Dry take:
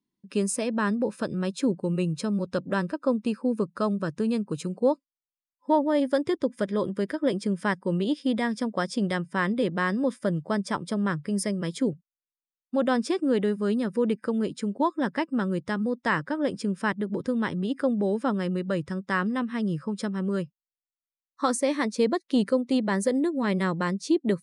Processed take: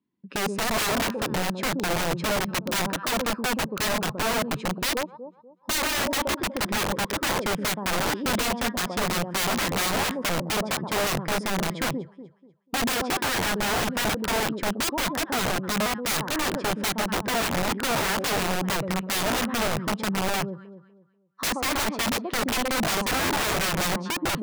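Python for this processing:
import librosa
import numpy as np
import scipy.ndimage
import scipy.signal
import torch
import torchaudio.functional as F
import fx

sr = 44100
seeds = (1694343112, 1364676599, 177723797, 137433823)

p1 = 10.0 ** (-24.5 / 20.0) * np.tanh(x / 10.0 ** (-24.5 / 20.0))
p2 = x + (p1 * 10.0 ** (-9.0 / 20.0))
p3 = scipy.signal.sosfilt(scipy.signal.butter(2, 64.0, 'highpass', fs=sr, output='sos'), p2)
p4 = fx.dynamic_eq(p3, sr, hz=960.0, q=1.3, threshold_db=-40.0, ratio=4.0, max_db=4)
p5 = scipy.signal.sosfilt(scipy.signal.butter(2, 2600.0, 'lowpass', fs=sr, output='sos'), p4)
p6 = p5 + fx.echo_alternate(p5, sr, ms=122, hz=910.0, feedback_pct=52, wet_db=-10.5, dry=0)
p7 = (np.mod(10.0 ** (22.0 / 20.0) * p6 + 1.0, 2.0) - 1.0) / 10.0 ** (22.0 / 20.0)
y = p7 * 10.0 ** (1.5 / 20.0)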